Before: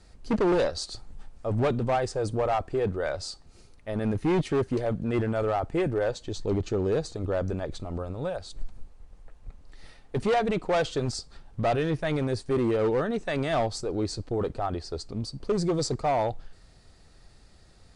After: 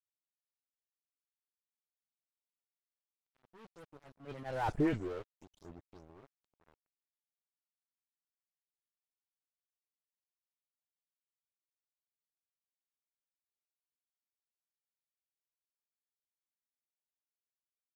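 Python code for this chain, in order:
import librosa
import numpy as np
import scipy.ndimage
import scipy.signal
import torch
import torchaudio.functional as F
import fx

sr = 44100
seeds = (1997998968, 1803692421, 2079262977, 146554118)

y = fx.spec_delay(x, sr, highs='late', ms=122)
y = fx.doppler_pass(y, sr, speed_mps=58, closest_m=4.7, pass_at_s=4.76)
y = np.sign(y) * np.maximum(np.abs(y) - 10.0 ** (-48.0 / 20.0), 0.0)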